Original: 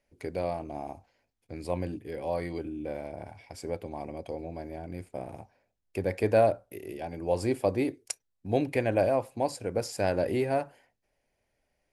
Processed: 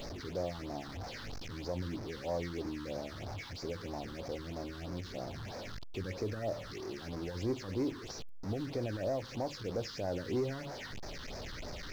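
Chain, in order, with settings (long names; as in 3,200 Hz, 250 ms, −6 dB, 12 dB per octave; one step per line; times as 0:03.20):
linear delta modulator 32 kbit/s, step −34 dBFS
brickwall limiter −20.5 dBFS, peak gain reduction 8 dB
reversed playback
upward compression, threshold −39 dBFS
reversed playback
soft clipping −25 dBFS, distortion −16 dB
all-pass phaser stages 6, 3.1 Hz, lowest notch 610–3,000 Hz
in parallel at −10 dB: bit reduction 8 bits
on the sum: level −4.5 dB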